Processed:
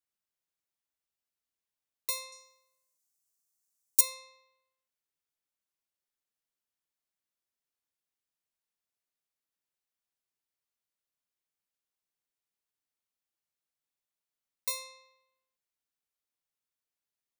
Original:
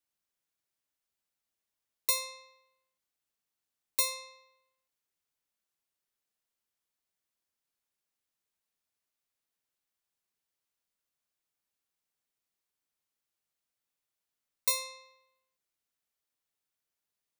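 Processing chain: 2.32–4.01 s: resonant high shelf 4.7 kHz +12 dB, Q 1.5; trim -5 dB

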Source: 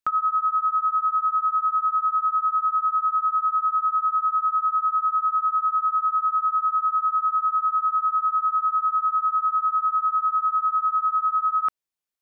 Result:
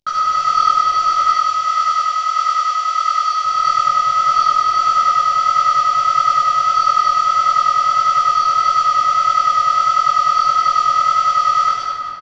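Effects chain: CVSD coder 32 kbps; 1.08–3.44 s: high-pass 1.2 kHz 6 dB/octave; multi-tap echo 148/235/407 ms -5/-5/-11 dB; reverberation RT60 2.8 s, pre-delay 7 ms, DRR -1 dB; detune thickener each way 55 cents; trim +7.5 dB

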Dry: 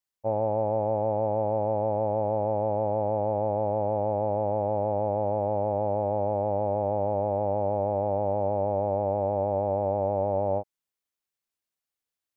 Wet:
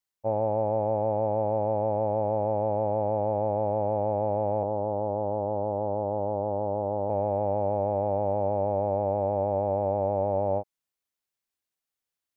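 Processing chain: 4.63–7.10 s: rippled Chebyshev low-pass 1.4 kHz, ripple 3 dB

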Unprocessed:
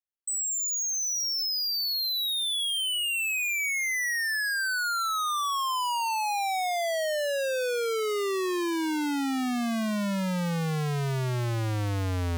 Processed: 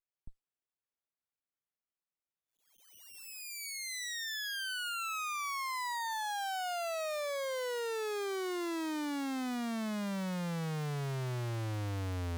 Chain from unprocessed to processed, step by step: sliding maximum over 9 samples; trim -8 dB

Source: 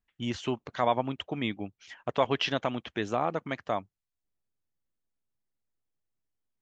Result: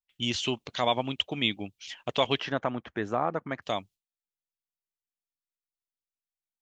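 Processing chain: gate with hold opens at -59 dBFS; resonant high shelf 2.2 kHz +9 dB, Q 1.5, from 2.40 s -6.5 dB, from 3.62 s +10 dB

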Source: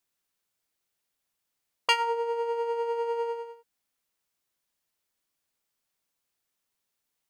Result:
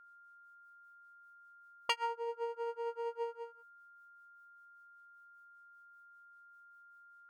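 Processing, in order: granulator 210 ms, grains 5.1 per s, spray 23 ms, pitch spread up and down by 0 st; whistle 1.4 kHz -51 dBFS; trim -6 dB

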